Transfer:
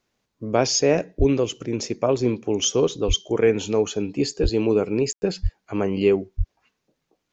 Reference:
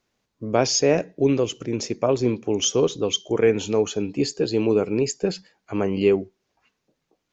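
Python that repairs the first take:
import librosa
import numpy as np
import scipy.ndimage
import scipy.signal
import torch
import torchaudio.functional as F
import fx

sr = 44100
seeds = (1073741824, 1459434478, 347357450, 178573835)

y = fx.fix_deplosive(x, sr, at_s=(1.18, 3.07, 4.42, 5.42, 6.37))
y = fx.fix_ambience(y, sr, seeds[0], print_start_s=6.8, print_end_s=7.3, start_s=5.13, end_s=5.22)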